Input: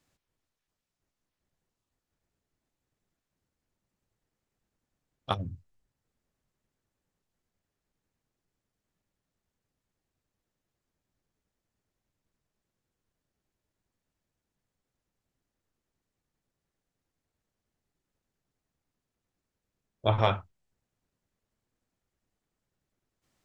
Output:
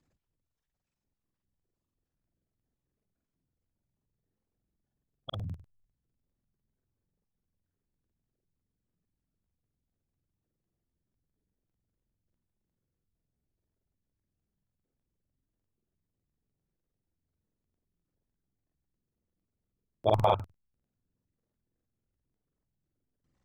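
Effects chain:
spectral envelope exaggerated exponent 2
regular buffer underruns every 0.10 s, samples 2,048, repeat, from 0:00.35

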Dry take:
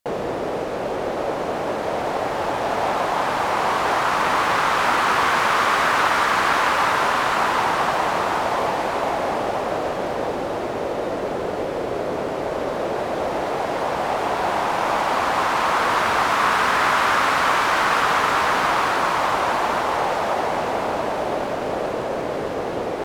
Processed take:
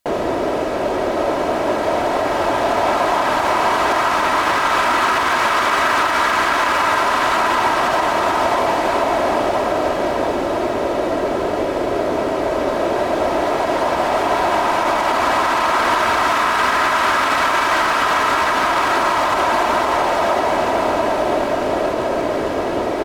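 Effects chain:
comb filter 3.1 ms, depth 43%
brickwall limiter −12.5 dBFS, peak gain reduction 7.5 dB
level +5 dB

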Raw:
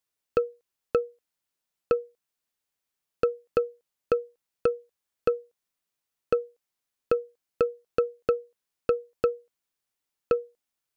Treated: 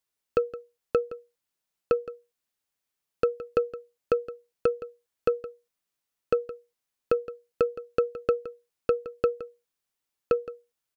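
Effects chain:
single-tap delay 167 ms −15.5 dB

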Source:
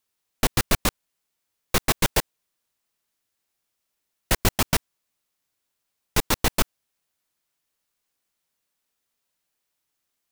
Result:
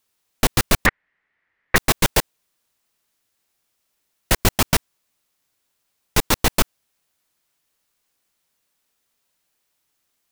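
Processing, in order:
in parallel at −1.5 dB: brickwall limiter −15.5 dBFS, peak gain reduction 9.5 dB
0:00.86–0:01.76: on the sum: low-pass with resonance 1,900 Hz, resonance Q 6.8
level +1 dB

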